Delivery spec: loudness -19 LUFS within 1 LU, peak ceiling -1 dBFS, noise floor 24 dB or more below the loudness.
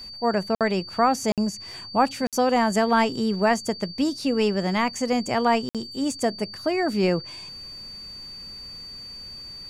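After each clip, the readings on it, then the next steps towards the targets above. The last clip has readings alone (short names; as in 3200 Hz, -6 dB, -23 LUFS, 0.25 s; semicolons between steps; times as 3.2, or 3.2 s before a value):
dropouts 4; longest dropout 57 ms; steady tone 4600 Hz; tone level -37 dBFS; loudness -24.0 LUFS; peak -8.0 dBFS; loudness target -19.0 LUFS
-> interpolate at 0.55/1.32/2.27/5.69, 57 ms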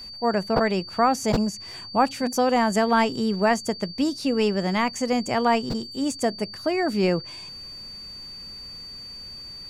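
dropouts 0; steady tone 4600 Hz; tone level -37 dBFS
-> notch 4600 Hz, Q 30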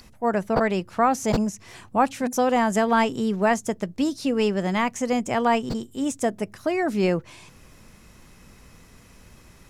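steady tone none; loudness -24.0 LUFS; peak -8.0 dBFS; loudness target -19.0 LUFS
-> gain +5 dB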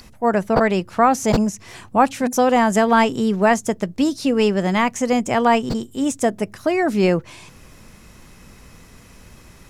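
loudness -19.0 LUFS; peak -3.0 dBFS; noise floor -46 dBFS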